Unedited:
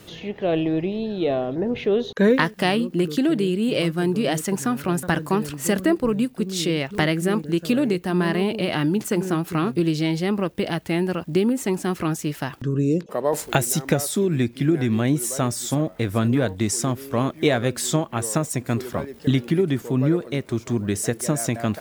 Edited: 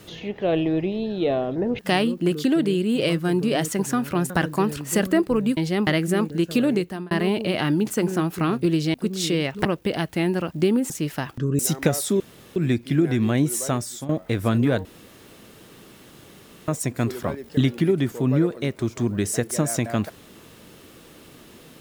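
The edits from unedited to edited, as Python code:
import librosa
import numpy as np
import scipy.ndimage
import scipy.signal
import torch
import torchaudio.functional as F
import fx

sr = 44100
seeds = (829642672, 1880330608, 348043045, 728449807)

y = fx.edit(x, sr, fx.cut(start_s=1.79, length_s=0.73),
    fx.swap(start_s=6.3, length_s=0.71, other_s=10.08, other_length_s=0.3),
    fx.fade_out_span(start_s=7.91, length_s=0.34),
    fx.cut(start_s=11.63, length_s=0.51),
    fx.cut(start_s=12.83, length_s=0.82),
    fx.insert_room_tone(at_s=14.26, length_s=0.36),
    fx.fade_out_to(start_s=15.35, length_s=0.44, floor_db=-14.0),
    fx.room_tone_fill(start_s=16.55, length_s=1.83), tone=tone)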